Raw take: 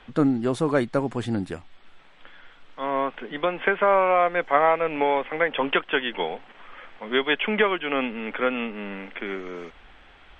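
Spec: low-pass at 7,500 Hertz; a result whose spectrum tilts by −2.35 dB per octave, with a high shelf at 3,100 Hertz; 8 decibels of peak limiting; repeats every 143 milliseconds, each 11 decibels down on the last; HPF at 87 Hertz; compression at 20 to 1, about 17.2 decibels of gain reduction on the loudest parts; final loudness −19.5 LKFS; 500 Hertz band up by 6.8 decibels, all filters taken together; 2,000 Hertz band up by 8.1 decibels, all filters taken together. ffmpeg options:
ffmpeg -i in.wav -af "highpass=87,lowpass=7500,equalizer=frequency=500:width_type=o:gain=7.5,equalizer=frequency=2000:width_type=o:gain=7,highshelf=frequency=3100:gain=8,acompressor=threshold=-26dB:ratio=20,alimiter=limit=-21dB:level=0:latency=1,aecho=1:1:143|286|429:0.282|0.0789|0.0221,volume=13dB" out.wav

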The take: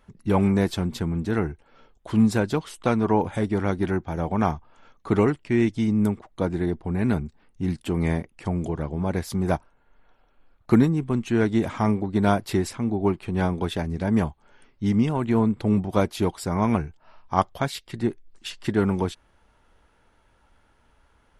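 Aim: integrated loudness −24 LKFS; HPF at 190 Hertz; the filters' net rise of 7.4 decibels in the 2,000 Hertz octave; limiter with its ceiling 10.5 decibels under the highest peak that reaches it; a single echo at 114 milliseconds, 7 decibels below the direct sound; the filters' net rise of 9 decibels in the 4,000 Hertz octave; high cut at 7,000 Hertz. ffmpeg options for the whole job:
ffmpeg -i in.wav -af "highpass=190,lowpass=7000,equalizer=frequency=2000:width_type=o:gain=7.5,equalizer=frequency=4000:width_type=o:gain=9,alimiter=limit=-12.5dB:level=0:latency=1,aecho=1:1:114:0.447,volume=2dB" out.wav

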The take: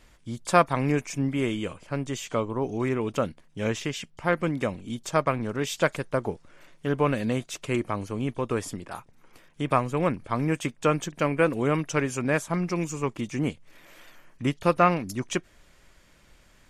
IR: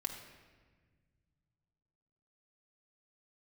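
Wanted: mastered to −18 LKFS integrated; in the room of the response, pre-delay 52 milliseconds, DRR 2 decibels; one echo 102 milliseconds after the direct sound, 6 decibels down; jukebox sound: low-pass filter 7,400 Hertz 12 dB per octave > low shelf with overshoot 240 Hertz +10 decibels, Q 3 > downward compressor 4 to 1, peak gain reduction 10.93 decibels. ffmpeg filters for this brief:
-filter_complex "[0:a]aecho=1:1:102:0.501,asplit=2[link_01][link_02];[1:a]atrim=start_sample=2205,adelay=52[link_03];[link_02][link_03]afir=irnorm=-1:irlink=0,volume=-2dB[link_04];[link_01][link_04]amix=inputs=2:normalize=0,lowpass=7400,lowshelf=frequency=240:width_type=q:width=3:gain=10,acompressor=threshold=-18dB:ratio=4,volume=4.5dB"

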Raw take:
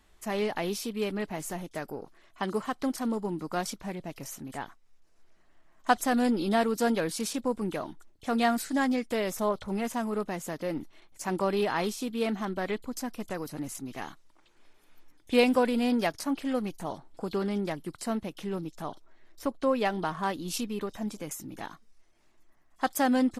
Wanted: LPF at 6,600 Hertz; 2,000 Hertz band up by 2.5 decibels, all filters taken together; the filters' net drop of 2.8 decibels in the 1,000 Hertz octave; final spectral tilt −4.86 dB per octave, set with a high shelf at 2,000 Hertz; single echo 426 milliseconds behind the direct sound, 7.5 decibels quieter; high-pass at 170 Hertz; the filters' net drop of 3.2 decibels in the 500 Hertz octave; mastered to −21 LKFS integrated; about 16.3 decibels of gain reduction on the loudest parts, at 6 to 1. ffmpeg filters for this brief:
ffmpeg -i in.wav -af "highpass=170,lowpass=6600,equalizer=frequency=500:width_type=o:gain=-3,equalizer=frequency=1000:width_type=o:gain=-3,highshelf=frequency=2000:gain=-5.5,equalizer=frequency=2000:width_type=o:gain=7.5,acompressor=threshold=-37dB:ratio=6,aecho=1:1:426:0.422,volume=20dB" out.wav

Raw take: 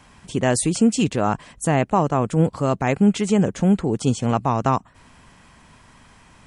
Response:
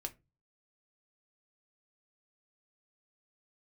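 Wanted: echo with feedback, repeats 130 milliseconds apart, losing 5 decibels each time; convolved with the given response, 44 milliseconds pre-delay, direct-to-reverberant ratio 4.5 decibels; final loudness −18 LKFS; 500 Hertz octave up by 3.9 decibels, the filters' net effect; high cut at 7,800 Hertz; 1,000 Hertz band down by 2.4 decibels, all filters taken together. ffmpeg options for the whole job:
-filter_complex "[0:a]lowpass=7800,equalizer=frequency=500:width_type=o:gain=6.5,equalizer=frequency=1000:width_type=o:gain=-6,aecho=1:1:130|260|390|520|650|780|910:0.562|0.315|0.176|0.0988|0.0553|0.031|0.0173,asplit=2[link_01][link_02];[1:a]atrim=start_sample=2205,adelay=44[link_03];[link_02][link_03]afir=irnorm=-1:irlink=0,volume=-2.5dB[link_04];[link_01][link_04]amix=inputs=2:normalize=0,volume=-2dB"

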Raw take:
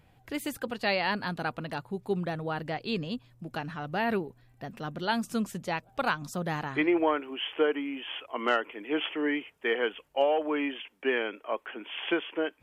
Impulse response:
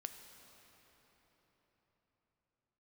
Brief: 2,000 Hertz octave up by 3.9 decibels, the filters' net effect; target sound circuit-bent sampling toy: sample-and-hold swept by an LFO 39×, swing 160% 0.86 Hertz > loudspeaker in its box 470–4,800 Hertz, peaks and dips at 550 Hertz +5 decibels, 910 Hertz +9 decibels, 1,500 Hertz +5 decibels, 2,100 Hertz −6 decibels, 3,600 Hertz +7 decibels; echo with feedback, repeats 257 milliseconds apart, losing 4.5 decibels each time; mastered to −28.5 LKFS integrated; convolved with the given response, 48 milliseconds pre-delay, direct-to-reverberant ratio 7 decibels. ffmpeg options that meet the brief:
-filter_complex "[0:a]equalizer=frequency=2000:width_type=o:gain=3,aecho=1:1:257|514|771|1028|1285|1542|1799|2056|2313:0.596|0.357|0.214|0.129|0.0772|0.0463|0.0278|0.0167|0.01,asplit=2[link_01][link_02];[1:a]atrim=start_sample=2205,adelay=48[link_03];[link_02][link_03]afir=irnorm=-1:irlink=0,volume=-3.5dB[link_04];[link_01][link_04]amix=inputs=2:normalize=0,acrusher=samples=39:mix=1:aa=0.000001:lfo=1:lforange=62.4:lforate=0.86,highpass=470,equalizer=frequency=550:width_type=q:width=4:gain=5,equalizer=frequency=910:width_type=q:width=4:gain=9,equalizer=frequency=1500:width_type=q:width=4:gain=5,equalizer=frequency=2100:width_type=q:width=4:gain=-6,equalizer=frequency=3600:width_type=q:width=4:gain=7,lowpass=frequency=4800:width=0.5412,lowpass=frequency=4800:width=1.3066"

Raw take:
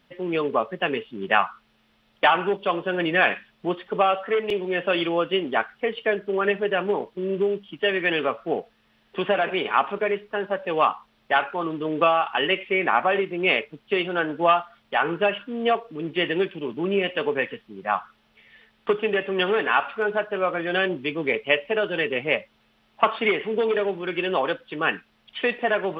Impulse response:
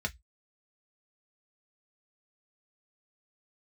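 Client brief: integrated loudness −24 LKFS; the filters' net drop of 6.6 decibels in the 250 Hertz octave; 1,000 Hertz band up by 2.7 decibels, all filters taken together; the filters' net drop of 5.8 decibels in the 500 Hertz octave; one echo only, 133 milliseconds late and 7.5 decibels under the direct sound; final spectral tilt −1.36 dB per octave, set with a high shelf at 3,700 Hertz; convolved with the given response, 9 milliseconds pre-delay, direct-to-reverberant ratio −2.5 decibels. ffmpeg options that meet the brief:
-filter_complex "[0:a]equalizer=frequency=250:width_type=o:gain=-7,equalizer=frequency=500:width_type=o:gain=-7.5,equalizer=frequency=1000:width_type=o:gain=7,highshelf=frequency=3700:gain=-8.5,aecho=1:1:133:0.422,asplit=2[link_01][link_02];[1:a]atrim=start_sample=2205,adelay=9[link_03];[link_02][link_03]afir=irnorm=-1:irlink=0,volume=-2dB[link_04];[link_01][link_04]amix=inputs=2:normalize=0,volume=-3dB"

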